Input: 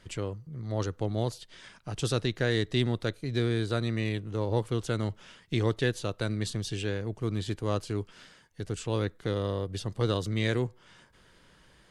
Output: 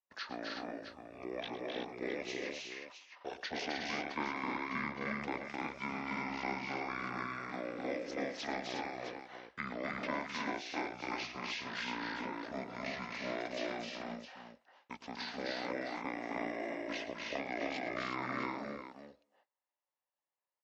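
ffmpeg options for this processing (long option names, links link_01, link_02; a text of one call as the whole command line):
ffmpeg -i in.wav -filter_complex "[0:a]agate=range=-42dB:threshold=-46dB:ratio=16:detection=peak,highpass=frequency=940:width_type=q:width=1.6,acrossover=split=1200|2500[link_01][link_02][link_03];[link_01]acompressor=threshold=-42dB:ratio=4[link_04];[link_02]acompressor=threshold=-52dB:ratio=4[link_05];[link_03]acompressor=threshold=-44dB:ratio=4[link_06];[link_04][link_05][link_06]amix=inputs=3:normalize=0,aecho=1:1:64|150|177|209|382:0.224|0.668|0.668|0.531|0.335,asetrate=25442,aresample=44100,volume=1dB" out.wav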